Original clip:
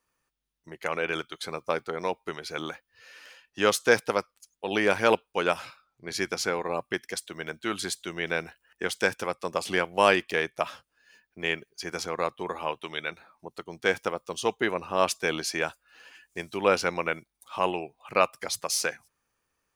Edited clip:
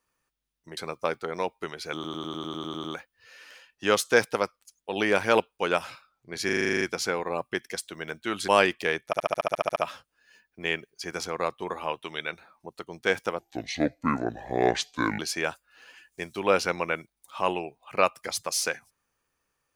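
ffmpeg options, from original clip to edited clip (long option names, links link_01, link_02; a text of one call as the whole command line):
ffmpeg -i in.wav -filter_complex "[0:a]asplit=33[link_01][link_02][link_03][link_04][link_05][link_06][link_07][link_08][link_09][link_10][link_11][link_12][link_13][link_14][link_15][link_16][link_17][link_18][link_19][link_20][link_21][link_22][link_23][link_24][link_25][link_26][link_27][link_28][link_29][link_30][link_31][link_32][link_33];[link_01]atrim=end=0.772[link_34];[link_02]atrim=start=1.418:end=2.692[link_35];[link_03]atrim=start=2.588:end=2.692[link_36];[link_04]atrim=start=2.588:end=2.692[link_37];[link_05]atrim=start=2.588:end=2.692[link_38];[link_06]atrim=start=2.588:end=2.692[link_39];[link_07]atrim=start=2.588:end=2.692[link_40];[link_08]atrim=start=2.588:end=2.692[link_41];[link_09]atrim=start=2.588:end=2.692[link_42];[link_10]atrim=start=2.588:end=2.692[link_43];[link_11]atrim=start=2.588:end=6.242[link_44];[link_12]atrim=start=6.198:end=6.242[link_45];[link_13]atrim=start=6.198:end=6.242[link_46];[link_14]atrim=start=6.198:end=6.242[link_47];[link_15]atrim=start=6.198:end=6.242[link_48];[link_16]atrim=start=6.198:end=6.242[link_49];[link_17]atrim=start=6.198:end=6.242[link_50];[link_18]atrim=start=6.198:end=6.242[link_51];[link_19]atrim=start=6.198:end=6.242[link_52];[link_20]atrim=start=6.198:end=7.872[link_53];[link_21]atrim=start=9.968:end=10.622[link_54];[link_22]atrim=start=10.548:end=10.622[link_55];[link_23]atrim=start=10.548:end=10.622[link_56];[link_24]atrim=start=10.548:end=10.622[link_57];[link_25]atrim=start=10.548:end=10.622[link_58];[link_26]atrim=start=10.548:end=10.622[link_59];[link_27]atrim=start=10.548:end=10.622[link_60];[link_28]atrim=start=10.548:end=10.622[link_61];[link_29]atrim=start=10.548:end=10.622[link_62];[link_30]atrim=start=10.548:end=10.622[link_63];[link_31]atrim=start=10.548:end=14.184[link_64];[link_32]atrim=start=14.18:end=15.37,asetpts=PTS-STARTPTS,asetrate=29106,aresample=44100[link_65];[link_33]atrim=start=15.366[link_66];[link_34][link_35]acrossfade=duration=0.004:curve1=hsin:curve2=hsin[link_67];[link_67][link_36]acrossfade=duration=0.004:curve1=hsin:curve2=hsin[link_68];[link_68][link_37]acrossfade=duration=0.004:curve1=hsin:curve2=hsin[link_69];[link_69][link_38]acrossfade=duration=0.004:curve1=hsin:curve2=hsin[link_70];[link_70][link_39]acrossfade=duration=0.004:curve1=hsin:curve2=hsin[link_71];[link_71][link_40]acrossfade=duration=0.004:curve1=hsin:curve2=hsin[link_72];[link_72][link_41]acrossfade=duration=0.004:curve1=hsin:curve2=hsin[link_73];[link_73][link_42]acrossfade=duration=0.004:curve1=hsin:curve2=hsin[link_74];[link_74][link_43]acrossfade=duration=0.004:curve1=hsin:curve2=hsin[link_75];[link_75][link_44]acrossfade=duration=0.004:curve1=hsin:curve2=hsin[link_76];[link_76][link_45]acrossfade=duration=0.004:curve1=hsin:curve2=hsin[link_77];[link_77][link_46]acrossfade=duration=0.004:curve1=hsin:curve2=hsin[link_78];[link_78][link_47]acrossfade=duration=0.004:curve1=hsin:curve2=hsin[link_79];[link_79][link_48]acrossfade=duration=0.004:curve1=hsin:curve2=hsin[link_80];[link_80][link_49]acrossfade=duration=0.004:curve1=hsin:curve2=hsin[link_81];[link_81][link_50]acrossfade=duration=0.004:curve1=hsin:curve2=hsin[link_82];[link_82][link_51]acrossfade=duration=0.004:curve1=hsin:curve2=hsin[link_83];[link_83][link_52]acrossfade=duration=0.004:curve1=hsin:curve2=hsin[link_84];[link_84][link_53]acrossfade=duration=0.004:curve1=hsin:curve2=hsin[link_85];[link_85][link_54]acrossfade=duration=0.004:curve1=hsin:curve2=hsin[link_86];[link_86][link_55]acrossfade=duration=0.004:curve1=hsin:curve2=hsin[link_87];[link_87][link_56]acrossfade=duration=0.004:curve1=hsin:curve2=hsin[link_88];[link_88][link_57]acrossfade=duration=0.004:curve1=hsin:curve2=hsin[link_89];[link_89][link_58]acrossfade=duration=0.004:curve1=hsin:curve2=hsin[link_90];[link_90][link_59]acrossfade=duration=0.004:curve1=hsin:curve2=hsin[link_91];[link_91][link_60]acrossfade=duration=0.004:curve1=hsin:curve2=hsin[link_92];[link_92][link_61]acrossfade=duration=0.004:curve1=hsin:curve2=hsin[link_93];[link_93][link_62]acrossfade=duration=0.004:curve1=hsin:curve2=hsin[link_94];[link_94][link_63]acrossfade=duration=0.004:curve1=hsin:curve2=hsin[link_95];[link_95][link_64]acrossfade=duration=0.004:curve1=hsin:curve2=hsin[link_96];[link_96][link_65]acrossfade=duration=0.004:curve1=hsin:curve2=hsin[link_97];[link_97][link_66]acrossfade=duration=0.004:curve1=hsin:curve2=hsin" out.wav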